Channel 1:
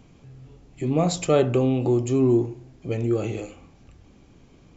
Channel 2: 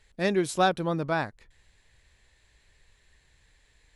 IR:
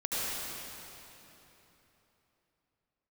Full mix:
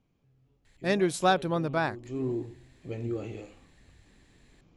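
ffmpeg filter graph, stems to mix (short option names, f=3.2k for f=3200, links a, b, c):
-filter_complex "[0:a]lowpass=5.9k,alimiter=limit=-14.5dB:level=0:latency=1:release=447,flanger=delay=4.9:depth=9.4:regen=85:speed=1.7:shape=triangular,volume=-5dB,afade=t=in:st=2.01:d=0.21:silence=0.281838[a];[1:a]adelay=650,volume=-0.5dB[b];[a][b]amix=inputs=2:normalize=0"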